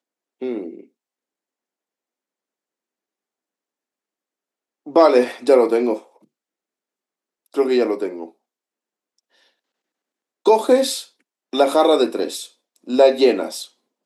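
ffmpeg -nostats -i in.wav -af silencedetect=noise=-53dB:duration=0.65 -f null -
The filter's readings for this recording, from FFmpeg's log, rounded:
silence_start: 0.88
silence_end: 4.86 | silence_duration: 3.98
silence_start: 6.25
silence_end: 7.46 | silence_duration: 1.21
silence_start: 8.32
silence_end: 9.19 | silence_duration: 0.86
silence_start: 9.49
silence_end: 10.45 | silence_duration: 0.97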